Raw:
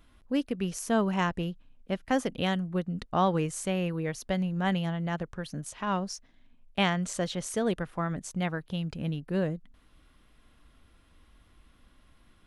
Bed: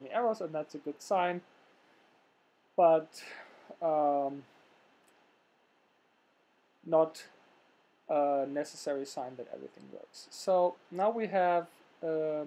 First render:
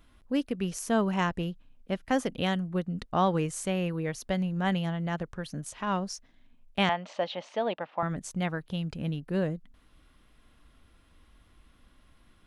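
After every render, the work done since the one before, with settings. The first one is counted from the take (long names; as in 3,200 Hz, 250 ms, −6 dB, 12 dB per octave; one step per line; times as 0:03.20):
0:06.89–0:08.03: loudspeaker in its box 340–4,000 Hz, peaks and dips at 400 Hz −7 dB, 610 Hz +7 dB, 860 Hz +9 dB, 1,500 Hz −4 dB, 2,700 Hz +4 dB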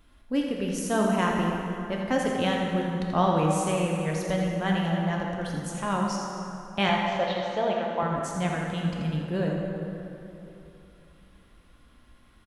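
single-tap delay 83 ms −8 dB
dense smooth reverb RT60 3.1 s, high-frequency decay 0.6×, DRR −0.5 dB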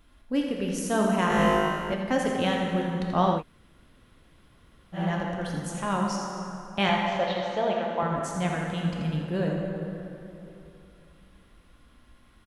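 0:01.28–0:01.94: flutter between parallel walls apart 3.3 metres, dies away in 1.1 s
0:03.38–0:04.97: fill with room tone, crossfade 0.10 s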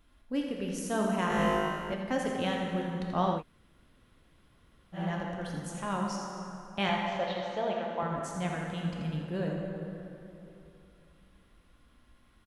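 level −5.5 dB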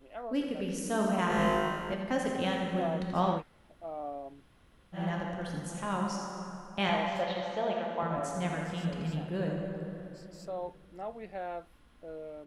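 mix in bed −10.5 dB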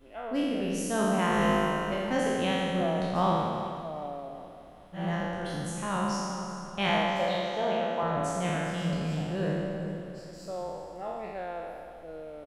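peak hold with a decay on every bin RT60 1.84 s
repeating echo 391 ms, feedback 44%, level −14.5 dB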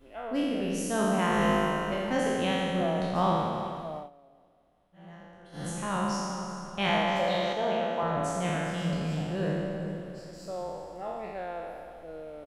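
0:03.96–0:05.66: duck −17.5 dB, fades 0.14 s
0:07.07–0:07.53: envelope flattener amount 50%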